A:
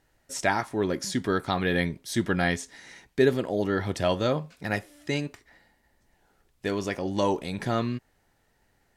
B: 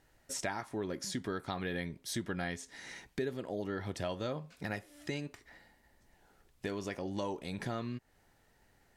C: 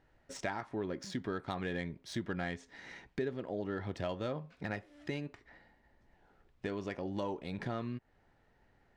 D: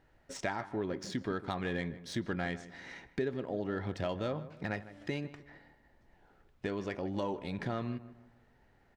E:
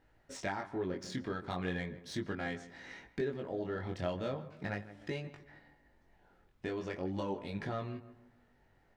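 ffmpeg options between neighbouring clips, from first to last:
-af "acompressor=threshold=-38dB:ratio=3"
-af "adynamicsmooth=sensitivity=5.5:basefreq=3.3k"
-filter_complex "[0:a]asplit=2[a][b];[b]adelay=154,lowpass=f=1.9k:p=1,volume=-14.5dB,asplit=2[c][d];[d]adelay=154,lowpass=f=1.9k:p=1,volume=0.4,asplit=2[e][f];[f]adelay=154,lowpass=f=1.9k:p=1,volume=0.4,asplit=2[g][h];[h]adelay=154,lowpass=f=1.9k:p=1,volume=0.4[i];[a][c][e][g][i]amix=inputs=5:normalize=0,volume=2dB"
-af "flanger=delay=19:depth=3.7:speed=0.38,volume=1dB"

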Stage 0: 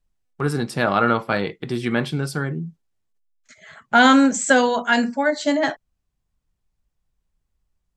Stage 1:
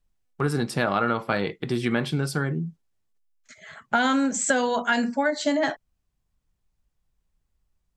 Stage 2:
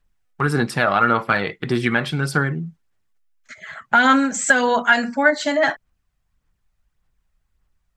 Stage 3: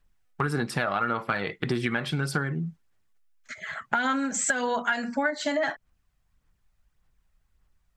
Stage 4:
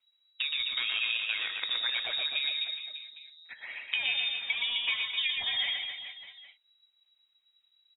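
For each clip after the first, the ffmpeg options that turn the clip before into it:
-af "acompressor=threshold=-19dB:ratio=6"
-af "equalizer=f=1.6k:t=o:w=1.6:g=7.5,aphaser=in_gain=1:out_gain=1:delay=1.6:decay=0.34:speed=1.7:type=sinusoidal,volume=1.5dB"
-af "acompressor=threshold=-24dB:ratio=5"
-af "aecho=1:1:120|258|416.7|599.2|809.1:0.631|0.398|0.251|0.158|0.1,lowpass=f=3.3k:t=q:w=0.5098,lowpass=f=3.3k:t=q:w=0.6013,lowpass=f=3.3k:t=q:w=0.9,lowpass=f=3.3k:t=q:w=2.563,afreqshift=-3900,volume=-6dB"

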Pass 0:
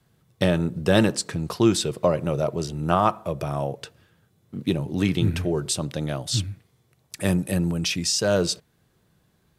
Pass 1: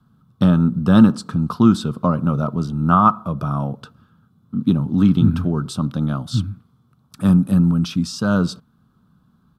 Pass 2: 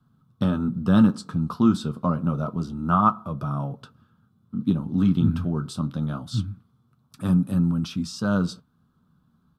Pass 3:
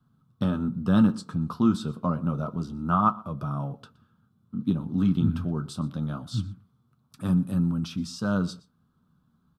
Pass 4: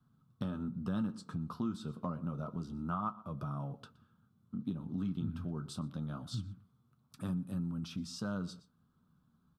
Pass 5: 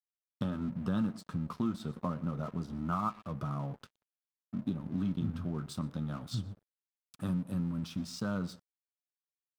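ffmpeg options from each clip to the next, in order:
-af "firequalizer=gain_entry='entry(100,0);entry(240,10);entry(340,-7);entry(590,-9);entry(1300,8);entry(1900,-19);entry(3400,-7);entry(6800,-15);entry(13000,-11)':delay=0.05:min_phase=1,volume=4dB"
-af "flanger=delay=7.1:depth=6:regen=-51:speed=0.27:shape=triangular,volume=-2dB"
-af "aecho=1:1:120:0.0794,volume=-3dB"
-af "acompressor=threshold=-33dB:ratio=2.5,volume=-4.5dB"
-af "aeval=exprs='sgn(val(0))*max(abs(val(0))-0.00168,0)':c=same,volume=4dB"

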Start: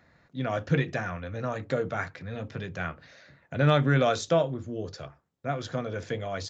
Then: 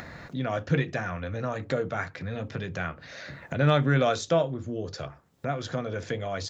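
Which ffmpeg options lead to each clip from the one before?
-af "acompressor=mode=upward:threshold=-27dB:ratio=2.5"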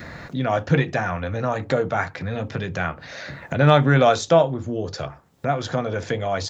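-af "adynamicequalizer=threshold=0.00708:dfrequency=840:dqfactor=2.5:tfrequency=840:tqfactor=2.5:attack=5:release=100:ratio=0.375:range=3.5:mode=boostabove:tftype=bell,volume=6dB"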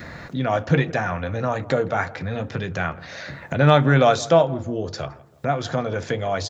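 -filter_complex "[0:a]asplit=2[a][b];[b]adelay=165,lowpass=f=1.5k:p=1,volume=-19dB,asplit=2[c][d];[d]adelay=165,lowpass=f=1.5k:p=1,volume=0.43,asplit=2[e][f];[f]adelay=165,lowpass=f=1.5k:p=1,volume=0.43[g];[a][c][e][g]amix=inputs=4:normalize=0"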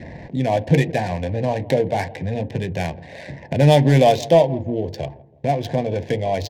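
-filter_complex "[0:a]asplit=2[a][b];[b]asoftclip=type=hard:threshold=-12dB,volume=-7dB[c];[a][c]amix=inputs=2:normalize=0,adynamicsmooth=sensitivity=2.5:basefreq=1.2k,asuperstop=centerf=1300:order=4:qfactor=1.4"

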